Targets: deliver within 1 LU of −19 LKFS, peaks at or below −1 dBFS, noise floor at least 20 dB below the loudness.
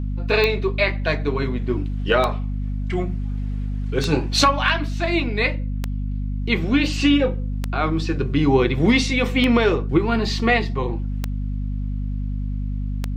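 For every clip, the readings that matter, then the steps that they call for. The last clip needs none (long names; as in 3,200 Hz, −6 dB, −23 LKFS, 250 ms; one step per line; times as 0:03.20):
number of clicks 8; mains hum 50 Hz; hum harmonics up to 250 Hz; level of the hum −22 dBFS; integrated loudness −21.5 LKFS; sample peak −4.0 dBFS; target loudness −19.0 LKFS
→ click removal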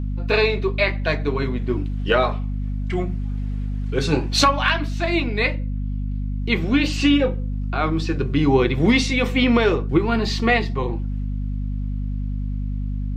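number of clicks 0; mains hum 50 Hz; hum harmonics up to 250 Hz; level of the hum −22 dBFS
→ mains-hum notches 50/100/150/200/250 Hz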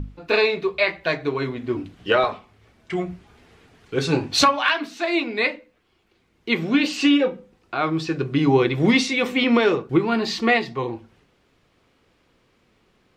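mains hum none found; integrated loudness −21.5 LKFS; sample peak −4.0 dBFS; target loudness −19.0 LKFS
→ level +2.5 dB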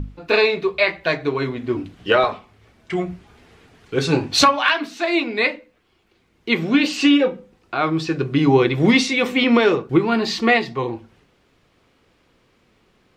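integrated loudness −19.0 LKFS; sample peak −1.5 dBFS; background noise floor −61 dBFS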